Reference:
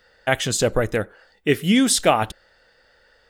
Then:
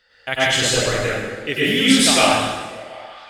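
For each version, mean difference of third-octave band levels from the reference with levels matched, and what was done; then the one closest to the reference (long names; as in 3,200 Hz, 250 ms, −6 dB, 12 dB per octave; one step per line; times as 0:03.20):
12.0 dB: parametric band 3,300 Hz +10.5 dB 2.3 octaves
on a send: echo through a band-pass that steps 183 ms, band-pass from 180 Hz, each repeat 0.7 octaves, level −10 dB
on the sum: dense smooth reverb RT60 1.3 s, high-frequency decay 0.9×, pre-delay 85 ms, DRR −9 dB
level −10 dB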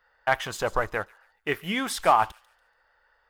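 5.0 dB: octave-band graphic EQ 125/250/500/1,000/4,000/8,000 Hz −8/−9/−5/+12/−5/−11 dB
leveller curve on the samples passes 1
on a send: delay with a high-pass on its return 143 ms, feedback 31%, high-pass 3,600 Hz, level −14.5 dB
on the sum: level −8 dB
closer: second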